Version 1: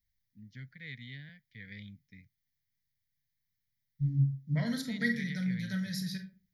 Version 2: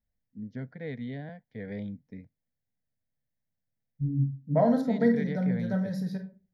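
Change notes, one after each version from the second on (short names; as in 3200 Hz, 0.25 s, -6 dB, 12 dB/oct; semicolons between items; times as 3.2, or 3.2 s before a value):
first voice +6.5 dB; master: remove EQ curve 140 Hz 0 dB, 230 Hz -9 dB, 780 Hz -23 dB, 2000 Hz +9 dB, 3200 Hz +12 dB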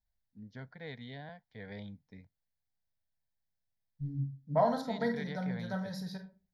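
master: add ten-band EQ 125 Hz -6 dB, 250 Hz -10 dB, 500 Hz -7 dB, 1000 Hz +7 dB, 2000 Hz -5 dB, 4000 Hz +6 dB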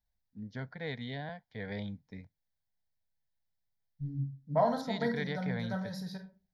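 first voice +6.0 dB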